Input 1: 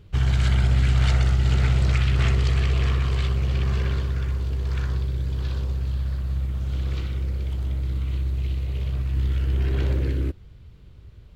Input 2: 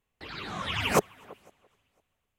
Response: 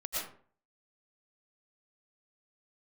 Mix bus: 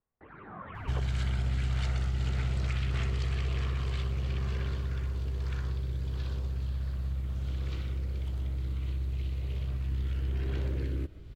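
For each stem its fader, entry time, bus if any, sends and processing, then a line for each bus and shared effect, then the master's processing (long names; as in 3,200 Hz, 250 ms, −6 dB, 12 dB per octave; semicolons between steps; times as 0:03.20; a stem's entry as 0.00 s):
+2.0 dB, 0.75 s, send −19 dB, no processing
−7.0 dB, 0.00 s, no send, inverse Chebyshev low-pass filter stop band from 8,700 Hz, stop band 80 dB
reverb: on, RT60 0.45 s, pre-delay 75 ms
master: downward compressor 2 to 1, threshold −38 dBFS, peak gain reduction 13.5 dB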